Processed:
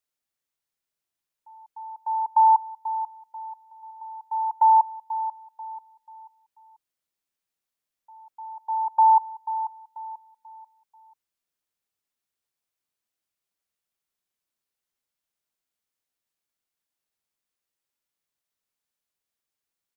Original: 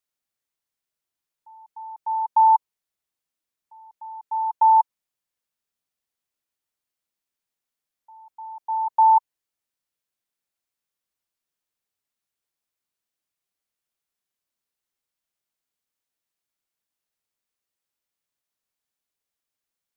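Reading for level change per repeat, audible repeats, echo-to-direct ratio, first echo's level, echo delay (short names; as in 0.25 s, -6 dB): -9.0 dB, 3, -11.5 dB, -12.0 dB, 0.488 s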